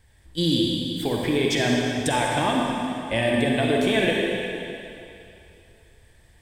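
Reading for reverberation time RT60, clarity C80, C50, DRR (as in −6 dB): 2.9 s, 0.0 dB, −1.5 dB, −2.0 dB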